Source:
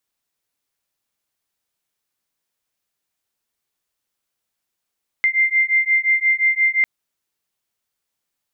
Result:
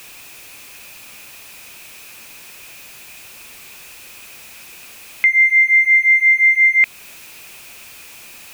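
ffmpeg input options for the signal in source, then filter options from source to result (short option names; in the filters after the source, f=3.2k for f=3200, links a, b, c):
-f lavfi -i "aevalsrc='0.133*(sin(2*PI*2090*t)+sin(2*PI*2095.7*t))':d=1.6:s=44100"
-filter_complex "[0:a]aeval=exprs='val(0)+0.5*0.0112*sgn(val(0))':c=same,equalizer=f=2.5k:t=o:w=0.25:g=14,asplit=2[a][b];[b]alimiter=limit=-21.5dB:level=0:latency=1:release=236,volume=-2.5dB[c];[a][c]amix=inputs=2:normalize=0"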